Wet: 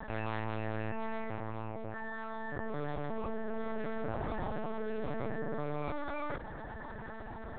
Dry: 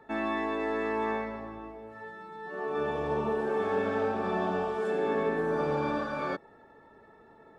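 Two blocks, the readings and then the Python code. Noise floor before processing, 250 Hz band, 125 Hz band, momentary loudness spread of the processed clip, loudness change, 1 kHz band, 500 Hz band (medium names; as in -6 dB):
-57 dBFS, -6.0 dB, +1.0 dB, 7 LU, -8.5 dB, -7.5 dB, -9.5 dB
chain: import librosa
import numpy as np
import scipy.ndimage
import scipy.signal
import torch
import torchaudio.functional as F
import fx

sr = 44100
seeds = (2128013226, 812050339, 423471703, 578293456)

y = fx.lpc_vocoder(x, sr, seeds[0], excitation='pitch_kept', order=8)
y = fx.env_flatten(y, sr, amount_pct=70)
y = F.gain(torch.from_numpy(y), -8.5).numpy()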